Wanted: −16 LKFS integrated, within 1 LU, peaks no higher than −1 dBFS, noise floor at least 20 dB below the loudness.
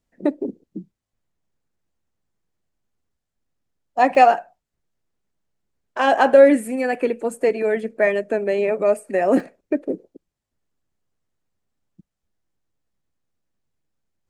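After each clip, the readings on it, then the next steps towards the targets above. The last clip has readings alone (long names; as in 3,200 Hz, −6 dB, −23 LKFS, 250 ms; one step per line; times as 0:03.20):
number of dropouts 3; longest dropout 1.1 ms; integrated loudness −19.0 LKFS; sample peak −2.0 dBFS; target loudness −16.0 LKFS
→ repair the gap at 0:04.15/0:06.95/0:09.40, 1.1 ms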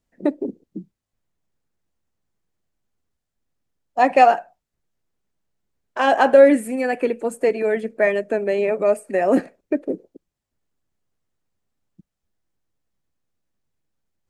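number of dropouts 0; integrated loudness −19.0 LKFS; sample peak −2.0 dBFS; target loudness −16.0 LKFS
→ level +3 dB
brickwall limiter −1 dBFS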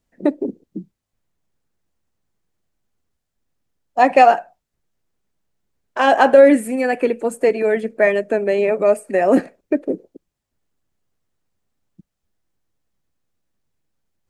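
integrated loudness −16.5 LKFS; sample peak −1.0 dBFS; background noise floor −79 dBFS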